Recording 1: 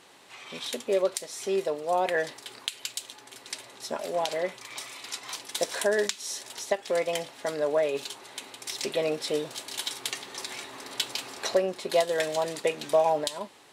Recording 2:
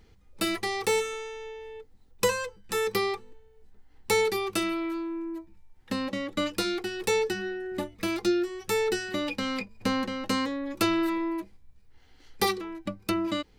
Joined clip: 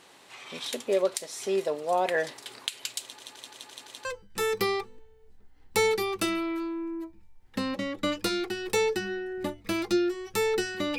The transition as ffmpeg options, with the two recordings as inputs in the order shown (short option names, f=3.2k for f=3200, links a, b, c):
-filter_complex "[0:a]apad=whole_dur=10.98,atrim=end=10.98,asplit=6[a][b][c][d][e][f];[a]atrim=end=3.202[g];[b]atrim=start=3.028:end=3.202[h];[c]atrim=start=3.028:end=3.202[i];[d]atrim=start=3.028:end=3.202[j];[e]atrim=start=3.028:end=3.202[k];[f]atrim=start=3.028:end=3.202[l];[1:a]atrim=start=2.388:end=9.32[m];[g][h]acrossfade=d=0.004:c1=hsin:c2=hsin[n];[n][i]acrossfade=d=0.004:c1=hsin:c2=hsin[o];[o][j]acrossfade=d=0.004:c1=hsin:c2=hsin[p];[p][k]acrossfade=d=0.004:c1=hsin:c2=hsin[q];[q][l]acrossfade=d=0.004:c1=hsin:c2=hsin[r];[r][m]acrossfade=d=0.004:c1=hsin:c2=hsin"